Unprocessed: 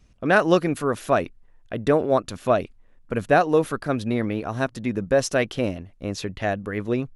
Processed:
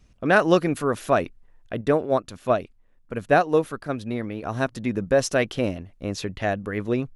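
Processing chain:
0:01.81–0:04.43: expander for the loud parts 1.5 to 1, over −25 dBFS

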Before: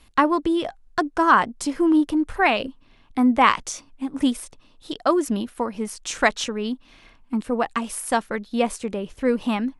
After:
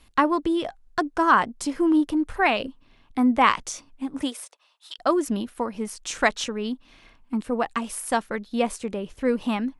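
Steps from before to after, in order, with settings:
0:04.21–0:04.98: high-pass filter 290 Hz → 1,200 Hz 24 dB per octave
level −2 dB

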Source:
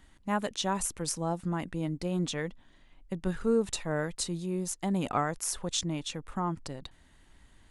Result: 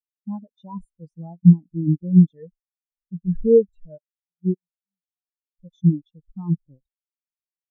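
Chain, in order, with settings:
leveller curve on the samples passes 1
0:03.97–0:05.60: gate with flip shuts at −21 dBFS, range −25 dB
in parallel at −6 dB: bit reduction 5 bits
on the sum: boost into a limiter +22 dB
every bin expanded away from the loudest bin 4 to 1
level −1 dB

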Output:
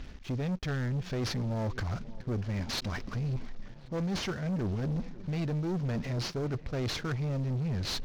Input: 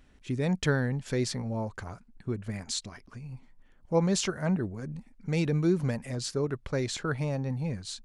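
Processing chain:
variable-slope delta modulation 32 kbit/s
reversed playback
downward compressor 6 to 1, threshold −40 dBFS, peak gain reduction 19 dB
reversed playback
low-shelf EQ 230 Hz +7 dB
on a send: tape delay 542 ms, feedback 79%, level −22 dB, low-pass 2,900 Hz
on the sum: leveller curve on the samples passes 3

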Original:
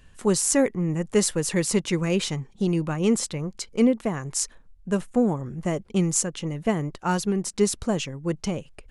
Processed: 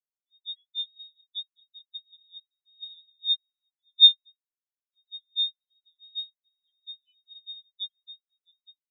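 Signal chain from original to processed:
parametric band 200 Hz +5 dB 0.86 octaves
three-band delay without the direct sound highs, lows, mids 40/200 ms, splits 160/590 Hz
voice inversion scrambler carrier 3,900 Hz
every bin expanded away from the loudest bin 4 to 1
level +3 dB

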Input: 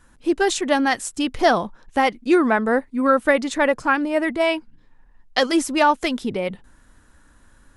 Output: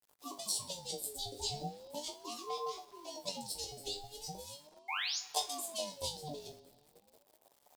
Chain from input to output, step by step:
lower of the sound and its delayed copy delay 0.31 ms
elliptic band-stop filter 240–3,300 Hz, stop band 60 dB
treble cut that deepens with the level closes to 990 Hz, closed at −15.5 dBFS
thirty-one-band graphic EQ 100 Hz +7 dB, 1,250 Hz +5 dB, 6,300 Hz +5 dB
harmonic and percussive parts rebalanced harmonic −15 dB
high-shelf EQ 8,800 Hz +9.5 dB
pitch shifter +5 semitones
sound drawn into the spectrogram rise, 0:04.88–0:05.19, 1,400–6,500 Hz −29 dBFS
resonators tuned to a chord G2 fifth, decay 0.25 s
bit reduction 11 bits
convolution reverb RT60 2.8 s, pre-delay 10 ms, DRR 15.5 dB
ring modulator whose carrier an LFO sweeps 580 Hz, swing 30%, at 0.38 Hz
level +6 dB

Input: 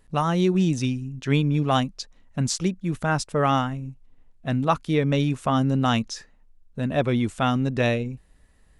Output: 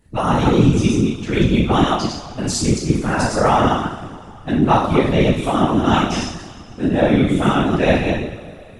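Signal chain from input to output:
delay that plays each chunk backwards 121 ms, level −1 dB
coupled-rooms reverb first 0.59 s, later 2.8 s, from −18 dB, DRR −5.5 dB
random phases in short frames
level −2 dB

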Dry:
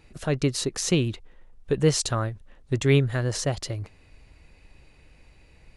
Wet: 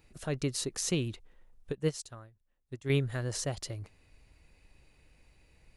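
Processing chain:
high-shelf EQ 9,300 Hz +11 dB
0:01.72–0:02.90: expander for the loud parts 2.5 to 1, over −28 dBFS
level −8.5 dB

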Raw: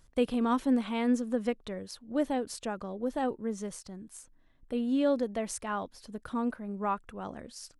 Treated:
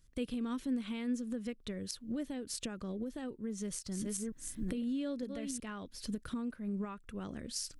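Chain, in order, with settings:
0:03.42–0:05.60: delay that plays each chunk backwards 451 ms, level −8 dB
camcorder AGC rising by 46 dB per second
parametric band 810 Hz −14.5 dB 1.4 octaves
level −6 dB

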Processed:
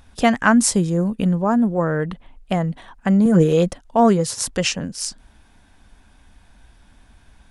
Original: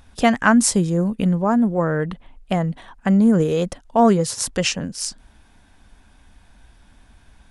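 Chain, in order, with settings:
0:01.12–0:01.87: notch filter 2,100 Hz, Q 12
0:03.25–0:03.71: comb filter 6 ms, depth 79%

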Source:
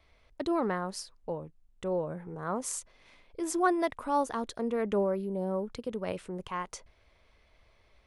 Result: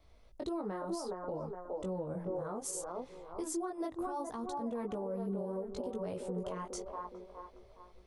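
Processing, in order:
delay with a band-pass on its return 416 ms, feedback 38%, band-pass 670 Hz, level −4.5 dB
multi-voice chorus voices 2, 0.66 Hz, delay 19 ms, depth 2.8 ms
downward compressor 12 to 1, threshold −37 dBFS, peak gain reduction 16 dB
brickwall limiter −33.5 dBFS, peak gain reduction 5.5 dB
parametric band 2,100 Hz −10.5 dB 1.7 octaves
level +5.5 dB

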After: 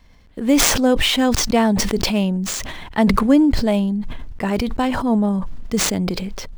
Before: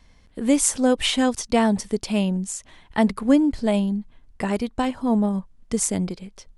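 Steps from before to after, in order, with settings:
running median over 5 samples
level that may fall only so fast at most 26 dB per second
level +2.5 dB

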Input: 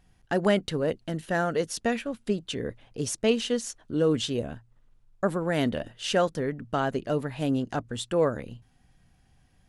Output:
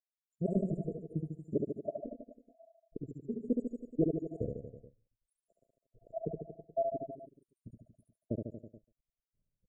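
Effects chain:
time-frequency cells dropped at random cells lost 83%
downward expander −53 dBFS
tilt shelving filter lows −3.5 dB, about 820 Hz
in parallel at −1.5 dB: downward compressor 6 to 1, threshold −39 dBFS, peak gain reduction 17 dB
on the sum: slap from a distant wall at 24 metres, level −23 dB
gate pattern "xxxxxxx.xx..xx" 175 BPM −12 dB
hard clipping −21 dBFS, distortion −18 dB
auto-filter low-pass sine 0.28 Hz 900–3,200 Hz
formants moved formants −3 semitones
linear-phase brick-wall band-stop 690–6,800 Hz
on a send: reverse bouncing-ball delay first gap 70 ms, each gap 1.1×, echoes 5

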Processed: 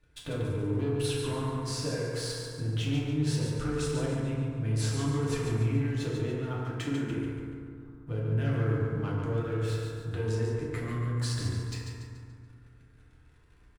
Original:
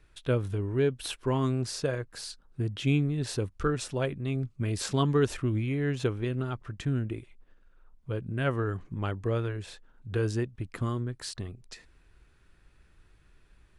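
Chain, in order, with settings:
0:06.63–0:07.11: high-pass filter 280 Hz 12 dB per octave
leveller curve on the samples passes 2
brickwall limiter −19.5 dBFS, peak gain reduction 5 dB
downward compressor, threshold −30 dBFS, peak gain reduction 8 dB
repeating echo 143 ms, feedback 43%, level −6 dB
feedback delay network reverb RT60 2.3 s, low-frequency decay 1.35×, high-frequency decay 0.3×, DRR −5.5 dB
level −7 dB

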